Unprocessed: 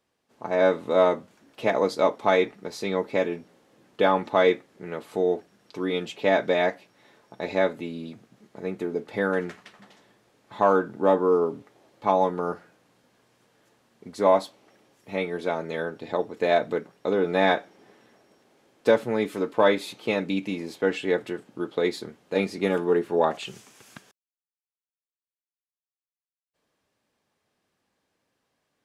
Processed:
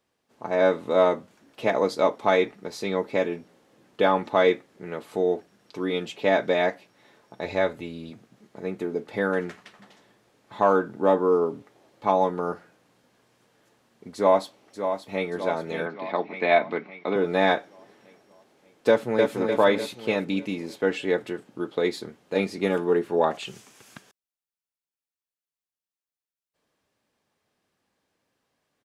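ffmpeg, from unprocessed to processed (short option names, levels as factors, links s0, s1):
-filter_complex "[0:a]asplit=3[s0][s1][s2];[s0]afade=t=out:st=7.43:d=0.02[s3];[s1]asubboost=boost=5.5:cutoff=85,afade=t=in:st=7.43:d=0.02,afade=t=out:st=8.1:d=0.02[s4];[s2]afade=t=in:st=8.1:d=0.02[s5];[s3][s4][s5]amix=inputs=3:normalize=0,asplit=2[s6][s7];[s7]afade=t=in:st=14.15:d=0.01,afade=t=out:st=15.29:d=0.01,aecho=0:1:580|1160|1740|2320|2900|3480|4060:0.398107|0.218959|0.120427|0.0662351|0.0364293|0.0200361|0.0110199[s8];[s6][s8]amix=inputs=2:normalize=0,asettb=1/sr,asplit=3[s9][s10][s11];[s9]atrim=end=15.864[s12];[s10]atrim=start=15.86:end=17.16,asetpts=PTS-STARTPTS,afade=t=in:d=0.004:c=qsin,afade=t=out:st=1.296:d=0.004:c=qsin,highpass=f=160:w=0.5412,highpass=f=160:w=1.3066,equalizer=f=490:t=q:w=4:g=-6,equalizer=f=730:t=q:w=4:g=4,equalizer=f=1100:t=q:w=4:g=4,equalizer=f=2200:t=q:w=4:g=10,lowpass=f=4600:w=0.5412,lowpass=f=4600:w=1.3066[s13];[s11]atrim=start=17.156[s14];[s12][s13]acrossfade=d=0.004:c1=hsin:c2=qsin[s15];[s15][s14]acrossfade=d=0.004:c1=qsin:c2=hsin,asplit=2[s16][s17];[s17]afade=t=in:st=18.88:d=0.01,afade=t=out:st=19.34:d=0.01,aecho=0:1:300|600|900|1200|1500|1800|2100:0.668344|0.334172|0.167086|0.083543|0.0417715|0.0208857|0.0104429[s18];[s16][s18]amix=inputs=2:normalize=0"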